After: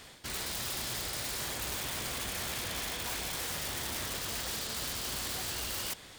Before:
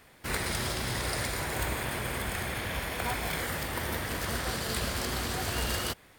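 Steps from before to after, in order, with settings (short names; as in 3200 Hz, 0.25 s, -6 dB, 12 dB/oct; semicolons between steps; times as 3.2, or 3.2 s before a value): band shelf 5000 Hz +8.5 dB; reverse; compressor 20:1, threshold -36 dBFS, peak gain reduction 13.5 dB; reverse; wrapped overs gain 34 dB; gain +4 dB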